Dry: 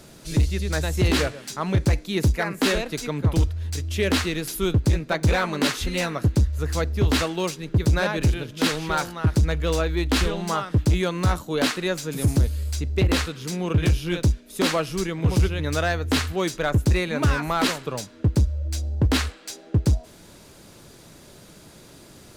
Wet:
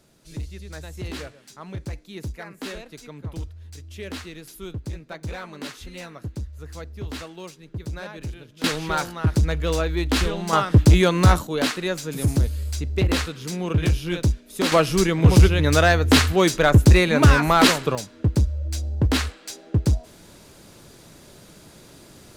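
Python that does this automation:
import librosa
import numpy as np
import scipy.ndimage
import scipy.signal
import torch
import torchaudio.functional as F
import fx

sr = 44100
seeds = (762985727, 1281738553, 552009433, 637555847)

y = fx.gain(x, sr, db=fx.steps((0.0, -12.5), (8.64, 0.0), (10.53, 6.5), (11.47, -0.5), (14.72, 7.0), (17.95, 0.0)))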